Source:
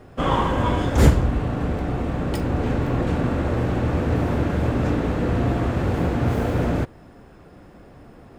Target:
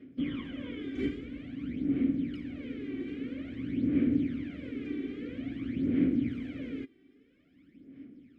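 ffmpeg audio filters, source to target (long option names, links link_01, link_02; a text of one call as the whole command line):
ffmpeg -i in.wav -filter_complex "[0:a]aphaser=in_gain=1:out_gain=1:delay=2.6:decay=0.69:speed=0.5:type=sinusoidal,asplit=3[link_01][link_02][link_03];[link_01]bandpass=frequency=270:width_type=q:width=8,volume=0dB[link_04];[link_02]bandpass=frequency=2290:width_type=q:width=8,volume=-6dB[link_05];[link_03]bandpass=frequency=3010:width_type=q:width=8,volume=-9dB[link_06];[link_04][link_05][link_06]amix=inputs=3:normalize=0,acrossover=split=3000[link_07][link_08];[link_08]acompressor=threshold=-58dB:ratio=4:attack=1:release=60[link_09];[link_07][link_09]amix=inputs=2:normalize=0,volume=-3dB" out.wav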